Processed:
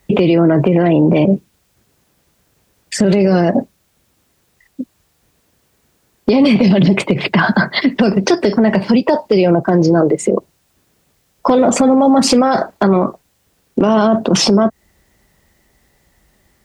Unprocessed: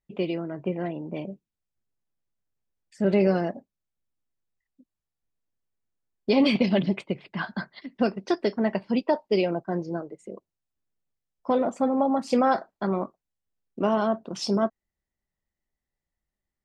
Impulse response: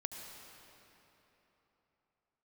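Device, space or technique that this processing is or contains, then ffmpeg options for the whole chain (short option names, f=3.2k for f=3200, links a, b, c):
mastering chain: -filter_complex "[0:a]highpass=44,equalizer=f=440:t=o:w=0.77:g=2,acrossover=split=170|2500|5700[a][b][c][d];[a]acompressor=threshold=-34dB:ratio=4[e];[b]acompressor=threshold=-29dB:ratio=4[f];[c]acompressor=threshold=-53dB:ratio=4[g];[d]acompressor=threshold=-52dB:ratio=4[h];[e][f][g][h]amix=inputs=4:normalize=0,acompressor=threshold=-31dB:ratio=3,asoftclip=type=hard:threshold=-24dB,alimiter=level_in=35.5dB:limit=-1dB:release=50:level=0:latency=1,volume=-3dB"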